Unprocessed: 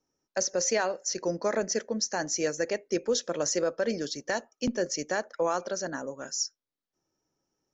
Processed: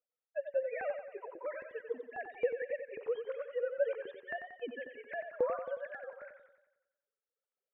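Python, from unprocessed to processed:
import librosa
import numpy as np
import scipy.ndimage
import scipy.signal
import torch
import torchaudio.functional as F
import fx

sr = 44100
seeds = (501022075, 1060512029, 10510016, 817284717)

y = fx.sine_speech(x, sr)
y = fx.filter_lfo_highpass(y, sr, shape='saw_up', hz=3.7, low_hz=320.0, high_hz=1500.0, q=0.92)
y = fx.echo_warbled(y, sr, ms=91, feedback_pct=53, rate_hz=2.8, cents=66, wet_db=-8)
y = y * 10.0 ** (-6.5 / 20.0)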